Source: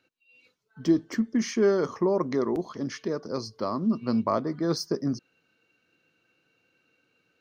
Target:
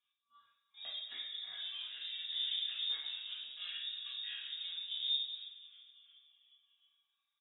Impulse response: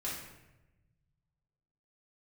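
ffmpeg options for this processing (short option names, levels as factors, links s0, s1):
-filter_complex "[0:a]aemphasis=mode=production:type=bsi,agate=range=0.224:threshold=0.00141:ratio=16:detection=peak,lowshelf=f=270:g=8.5,alimiter=limit=0.0794:level=0:latency=1:release=265,acompressor=threshold=0.0141:ratio=12,asplit=4[s0][s1][s2][s3];[s1]asetrate=58866,aresample=44100,atempo=0.749154,volume=0.158[s4];[s2]asetrate=66075,aresample=44100,atempo=0.66742,volume=0.178[s5];[s3]asetrate=88200,aresample=44100,atempo=0.5,volume=0.631[s6];[s0][s4][s5][s6]amix=inputs=4:normalize=0,aphaser=in_gain=1:out_gain=1:delay=2:decay=0.46:speed=0.39:type=sinusoidal,adynamicsmooth=sensitivity=5:basefreq=2100,asplit=6[s7][s8][s9][s10][s11][s12];[s8]adelay=354,afreqshift=57,volume=0.178[s13];[s9]adelay=708,afreqshift=114,volume=0.0955[s14];[s10]adelay=1062,afreqshift=171,volume=0.0519[s15];[s11]adelay=1416,afreqshift=228,volume=0.0279[s16];[s12]adelay=1770,afreqshift=285,volume=0.0151[s17];[s7][s13][s14][s15][s16][s17]amix=inputs=6:normalize=0[s18];[1:a]atrim=start_sample=2205,afade=t=out:st=0.4:d=0.01,atrim=end_sample=18081[s19];[s18][s19]afir=irnorm=-1:irlink=0,lowpass=f=3300:t=q:w=0.5098,lowpass=f=3300:t=q:w=0.6013,lowpass=f=3300:t=q:w=0.9,lowpass=f=3300:t=q:w=2.563,afreqshift=-3900,volume=0.501"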